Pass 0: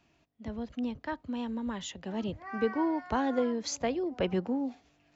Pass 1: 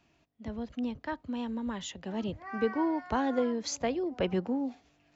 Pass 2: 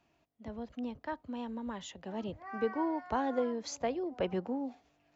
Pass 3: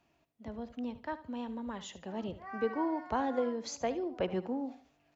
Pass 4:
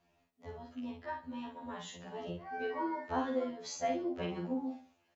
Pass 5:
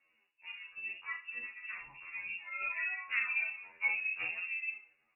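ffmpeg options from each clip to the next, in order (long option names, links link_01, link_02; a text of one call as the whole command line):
ffmpeg -i in.wav -af anull out.wav
ffmpeg -i in.wav -af "equalizer=frequency=730:width_type=o:width=1.9:gain=5.5,volume=-6.5dB" out.wav
ffmpeg -i in.wav -af "aecho=1:1:74|148|222:0.188|0.0546|0.0158" out.wav
ffmpeg -i in.wav -filter_complex "[0:a]asplit=2[link_01][link_02];[link_02]adelay=46,volume=-3.5dB[link_03];[link_01][link_03]amix=inputs=2:normalize=0,afftfilt=real='re*2*eq(mod(b,4),0)':imag='im*2*eq(mod(b,4),0)':win_size=2048:overlap=0.75" out.wav
ffmpeg -i in.wav -af "lowpass=frequency=2500:width_type=q:width=0.5098,lowpass=frequency=2500:width_type=q:width=0.6013,lowpass=frequency=2500:width_type=q:width=0.9,lowpass=frequency=2500:width_type=q:width=2.563,afreqshift=-2900,flanger=delay=3.6:depth=6.5:regen=43:speed=0.66:shape=sinusoidal,volume=3.5dB" out.wav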